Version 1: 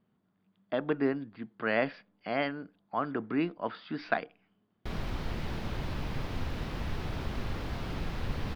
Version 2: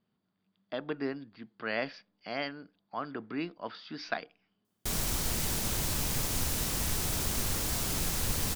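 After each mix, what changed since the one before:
speech -6.5 dB; master: remove air absorption 350 m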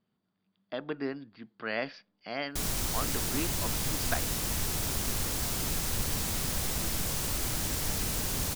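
background: entry -2.30 s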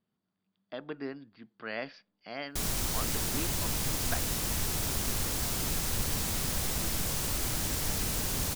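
speech -4.0 dB

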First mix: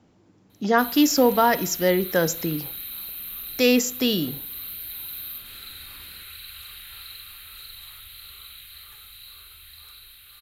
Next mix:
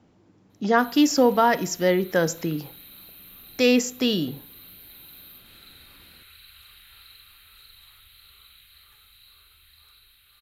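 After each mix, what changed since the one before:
background -7.0 dB; master: add high shelf 6500 Hz -6 dB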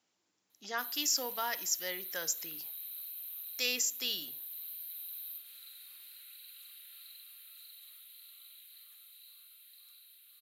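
master: add differentiator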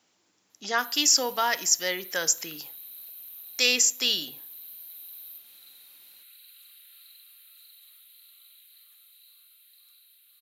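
speech +10.5 dB

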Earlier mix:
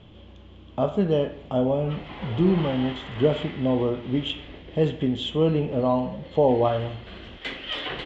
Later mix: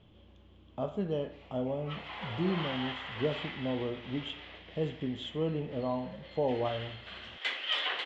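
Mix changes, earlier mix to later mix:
speech -11.0 dB; background: add HPF 770 Hz 12 dB/oct

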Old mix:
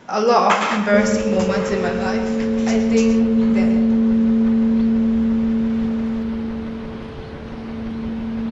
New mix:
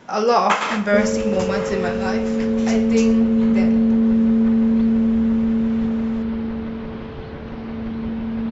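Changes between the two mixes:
speech: send -11.5 dB; background: add running mean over 5 samples

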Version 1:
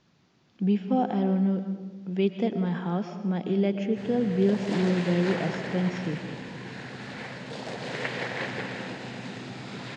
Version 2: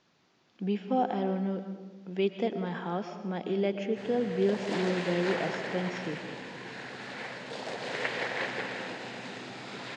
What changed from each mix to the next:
master: add tone controls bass -11 dB, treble -1 dB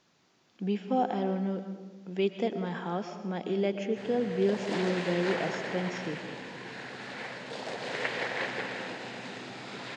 speech: remove LPF 5500 Hz 12 dB/oct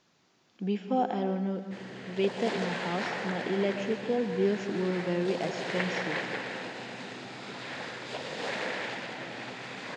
background: entry -2.25 s

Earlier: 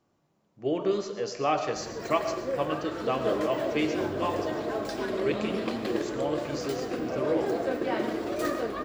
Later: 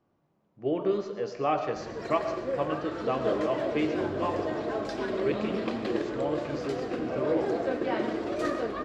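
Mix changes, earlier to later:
speech: add high shelf 3800 Hz -10.5 dB; master: add air absorption 73 m

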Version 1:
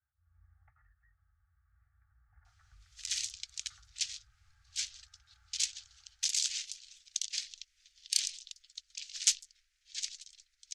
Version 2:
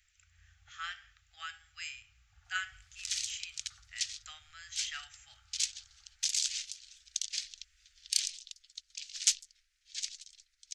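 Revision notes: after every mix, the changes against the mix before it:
speech: unmuted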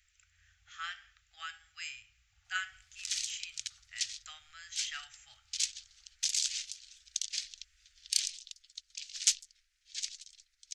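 first sound -7.5 dB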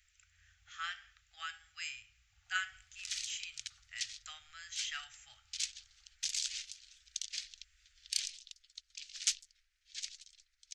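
second sound: add high shelf 3800 Hz -7.5 dB

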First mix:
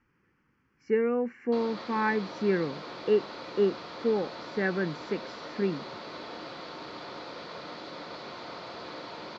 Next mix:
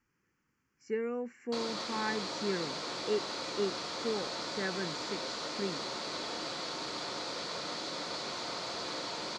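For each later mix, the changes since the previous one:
speech -9.0 dB; master: remove air absorption 240 m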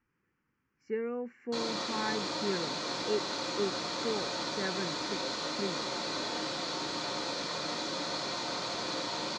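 speech: add Bessel low-pass 2900 Hz, order 2; background: send +10.0 dB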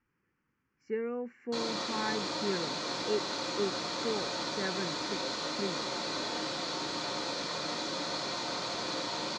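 none

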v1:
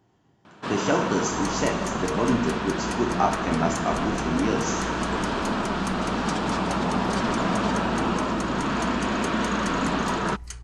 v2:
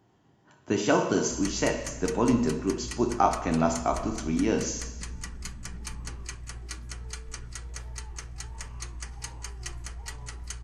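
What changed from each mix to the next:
first sound: muted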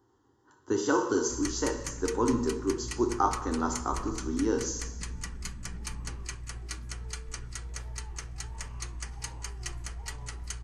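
speech: add fixed phaser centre 650 Hz, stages 6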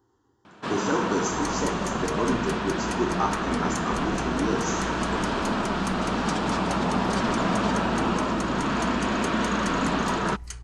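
first sound: unmuted

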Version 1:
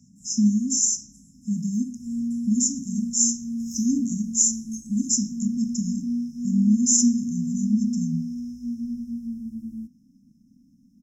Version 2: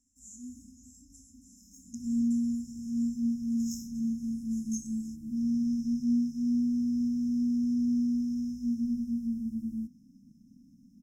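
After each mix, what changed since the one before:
speech: muted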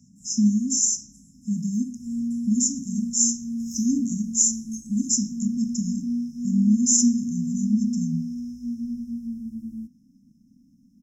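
speech: unmuted

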